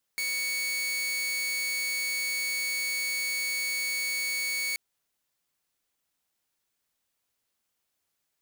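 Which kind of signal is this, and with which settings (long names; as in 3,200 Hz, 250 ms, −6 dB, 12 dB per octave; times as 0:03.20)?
tone saw 2,230 Hz −25.5 dBFS 4.58 s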